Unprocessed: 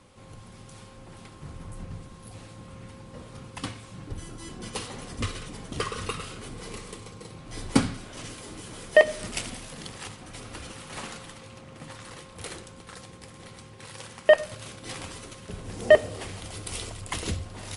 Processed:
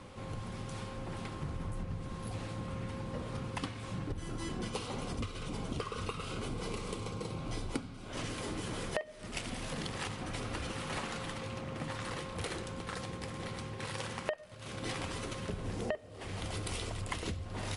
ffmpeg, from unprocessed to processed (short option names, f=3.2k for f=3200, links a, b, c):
-filter_complex "[0:a]asettb=1/sr,asplit=3[a][b][c];[a]atrim=end=4.684[d];[b]atrim=start=4.68:end=8.11,asetpts=PTS-STARTPTS,afade=t=in:d=0.004:c=qsin,afade=t=out:st=3.426:d=0.004:c=qsin,equalizer=f=1.8k:w=7.3:g=-11.5[e];[c]atrim=start=8.106[f];[d][e]acrossfade=d=0.004:c1=hsin:c2=qsin[g];[g][f]acrossfade=d=0.004:c1=qsin:c2=hsin,highshelf=f=5.6k:g=-10,acompressor=threshold=-40dB:ratio=16,volume=6dB"